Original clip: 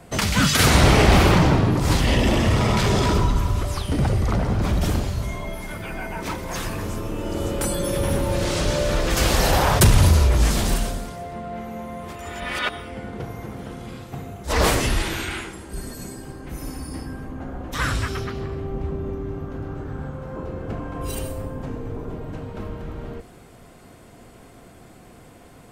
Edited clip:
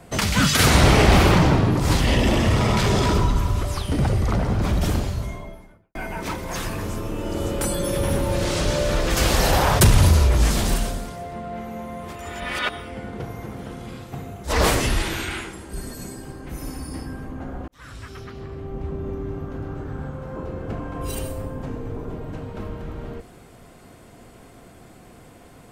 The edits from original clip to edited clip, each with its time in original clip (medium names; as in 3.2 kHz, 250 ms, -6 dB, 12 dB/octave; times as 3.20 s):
5.00–5.95 s: studio fade out
17.68–19.21 s: fade in